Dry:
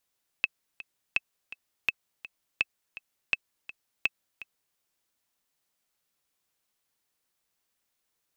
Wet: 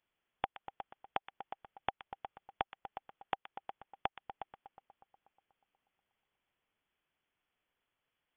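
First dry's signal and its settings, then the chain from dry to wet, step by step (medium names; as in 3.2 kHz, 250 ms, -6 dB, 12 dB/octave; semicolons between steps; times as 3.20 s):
metronome 166 bpm, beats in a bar 2, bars 6, 2.61 kHz, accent 16.5 dB -10.5 dBFS
compression 3:1, threshold -34 dBFS; two-band feedback delay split 2.2 kHz, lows 122 ms, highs 242 ms, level -11.5 dB; frequency inversion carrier 3.4 kHz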